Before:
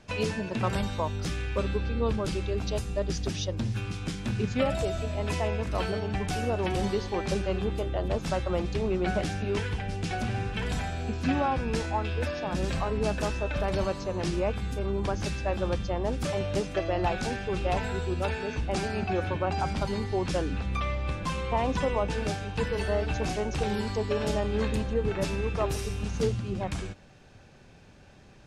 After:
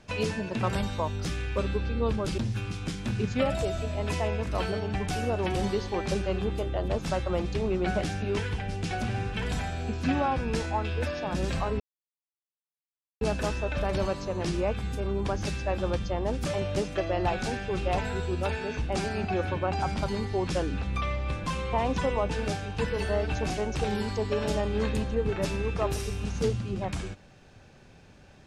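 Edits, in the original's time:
0:02.38–0:03.58: remove
0:13.00: splice in silence 1.41 s

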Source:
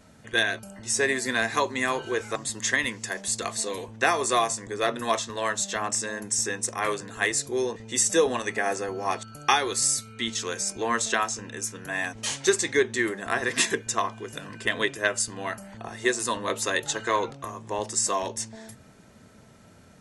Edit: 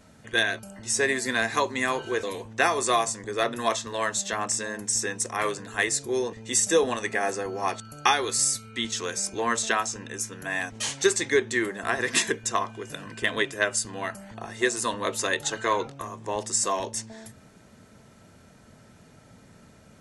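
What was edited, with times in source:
0:02.23–0:03.66: remove

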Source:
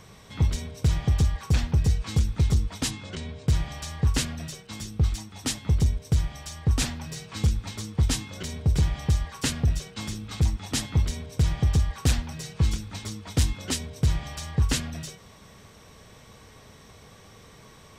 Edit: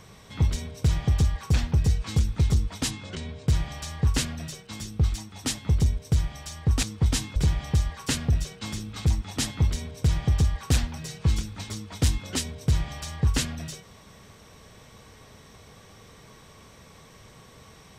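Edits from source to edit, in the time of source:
0:06.83–0:07.80: remove
0:08.33–0:08.71: remove

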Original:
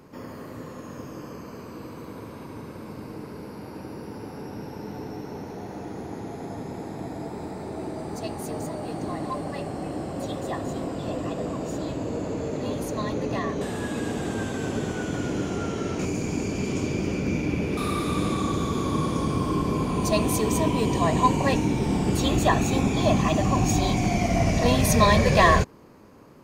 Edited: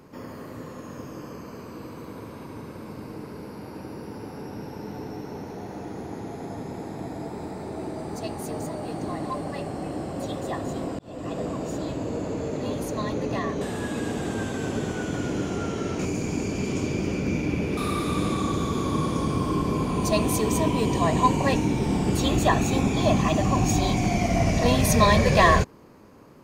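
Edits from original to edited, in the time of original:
0:10.99–0:11.36: fade in

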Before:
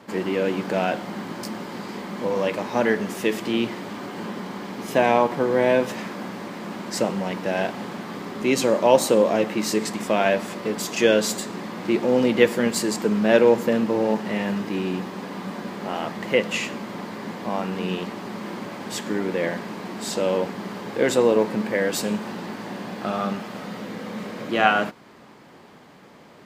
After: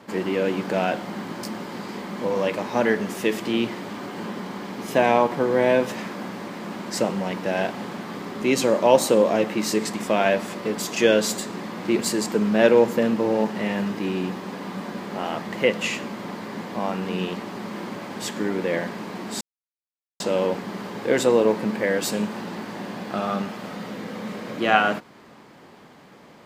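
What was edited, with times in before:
0:11.99–0:12.69: remove
0:20.11: splice in silence 0.79 s

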